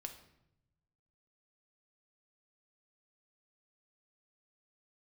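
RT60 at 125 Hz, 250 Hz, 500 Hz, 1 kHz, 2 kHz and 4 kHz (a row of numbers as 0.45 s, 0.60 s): 1.5 s, 1.3 s, 0.90 s, 0.75 s, 0.70 s, 0.60 s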